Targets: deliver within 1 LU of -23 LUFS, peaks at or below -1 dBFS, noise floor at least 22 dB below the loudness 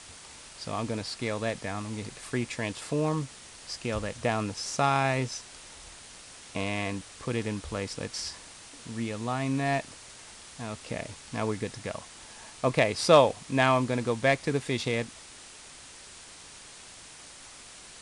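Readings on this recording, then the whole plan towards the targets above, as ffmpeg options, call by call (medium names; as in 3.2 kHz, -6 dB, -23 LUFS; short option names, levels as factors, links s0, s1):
noise floor -49 dBFS; noise floor target -52 dBFS; loudness -29.5 LUFS; peak level -5.5 dBFS; loudness target -23.0 LUFS
-> -af "afftdn=nr=6:nf=-49"
-af "volume=2.11,alimiter=limit=0.891:level=0:latency=1"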